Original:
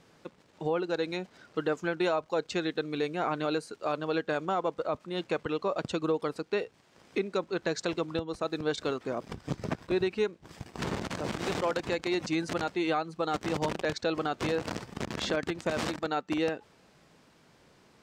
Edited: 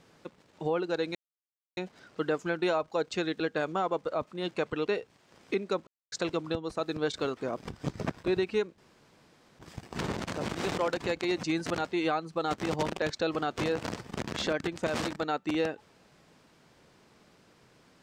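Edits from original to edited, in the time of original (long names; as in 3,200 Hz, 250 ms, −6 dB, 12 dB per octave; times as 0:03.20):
0:01.15: splice in silence 0.62 s
0:02.78–0:04.13: remove
0:05.60–0:06.51: remove
0:07.51–0:07.76: silence
0:10.42: splice in room tone 0.81 s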